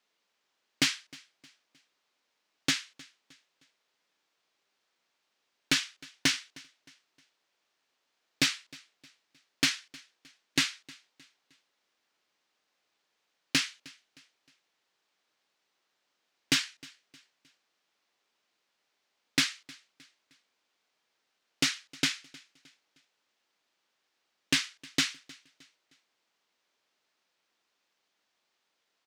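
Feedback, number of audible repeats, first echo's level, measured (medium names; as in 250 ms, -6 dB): 39%, 2, -23.0 dB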